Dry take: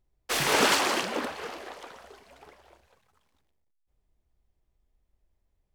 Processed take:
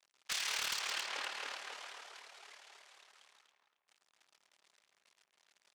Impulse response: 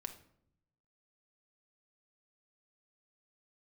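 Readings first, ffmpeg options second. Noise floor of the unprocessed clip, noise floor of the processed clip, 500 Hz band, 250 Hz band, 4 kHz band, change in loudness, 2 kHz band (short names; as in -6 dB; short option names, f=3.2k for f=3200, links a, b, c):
-76 dBFS, -82 dBFS, -23.5 dB, -31.0 dB, -8.5 dB, -12.5 dB, -11.0 dB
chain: -filter_complex "[0:a]aeval=exprs='val(0)+0.5*0.0168*sgn(val(0))':c=same,agate=range=-33dB:threshold=-36dB:ratio=3:detection=peak,lowpass=9.1k,tremolo=f=37:d=0.571,aderivative,adynamicsmooth=sensitivity=2.5:basefreq=3.1k,highpass=f=990:p=1,asplit=2[a][b];[b]adelay=272,lowpass=f=1.6k:p=1,volume=-4dB,asplit=2[c][d];[d]adelay=272,lowpass=f=1.6k:p=1,volume=0.39,asplit=2[e][f];[f]adelay=272,lowpass=f=1.6k:p=1,volume=0.39,asplit=2[g][h];[h]adelay=272,lowpass=f=1.6k:p=1,volume=0.39,asplit=2[i][j];[j]adelay=272,lowpass=f=1.6k:p=1,volume=0.39[k];[a][c][e][g][i][k]amix=inputs=6:normalize=0,acompressor=threshold=-44dB:ratio=5,asplit=2[l][m];[1:a]atrim=start_sample=2205,lowshelf=f=400:g=10[n];[m][n]afir=irnorm=-1:irlink=0,volume=-9dB[o];[l][o]amix=inputs=2:normalize=0,aeval=exprs='0.0158*(abs(mod(val(0)/0.0158+3,4)-2)-1)':c=same,highshelf=f=6.3k:g=6,volume=7dB"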